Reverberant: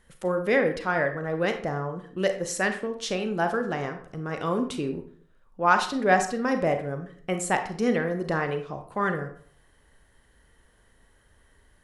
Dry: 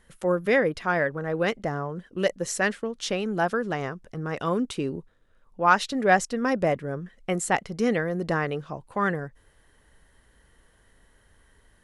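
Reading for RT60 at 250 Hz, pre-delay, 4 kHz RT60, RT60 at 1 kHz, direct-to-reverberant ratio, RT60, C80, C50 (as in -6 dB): 0.55 s, 31 ms, 0.35 s, 0.55 s, 6.5 dB, 0.50 s, 13.0 dB, 9.0 dB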